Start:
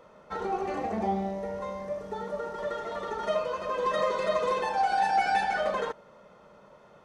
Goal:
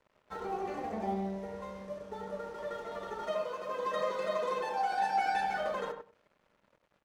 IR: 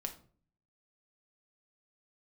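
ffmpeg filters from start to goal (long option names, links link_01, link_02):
-filter_complex "[0:a]asettb=1/sr,asplit=3[link_01][link_02][link_03];[link_01]atrim=end=3.234[link_04];[link_02]atrim=start=3.23:end=5.35,asetpts=PTS-STARTPTS,afade=type=in:duration=0.004:curve=qsin,afade=type=out:start_time=2.116:duration=0.004:curve=qsin,highpass=170[link_05];[link_03]atrim=start=5.346[link_06];[link_04][link_05]acrossfade=duration=0.004:curve1=hsin:curve2=qsin[link_07];[link_07][link_06]acrossfade=duration=0.004:curve1=qsin:curve2=hsin,aeval=exprs='sgn(val(0))*max(abs(val(0))-0.00266,0)':channel_layout=same,asplit=2[link_08][link_09];[link_09]adelay=98,lowpass=frequency=1300:poles=1,volume=-5dB,asplit=2[link_10][link_11];[link_11]adelay=98,lowpass=frequency=1300:poles=1,volume=0.17,asplit=2[link_12][link_13];[link_13]adelay=98,lowpass=frequency=1300:poles=1,volume=0.17[link_14];[link_08][link_10][link_12][link_14]amix=inputs=4:normalize=0,volume=-6dB"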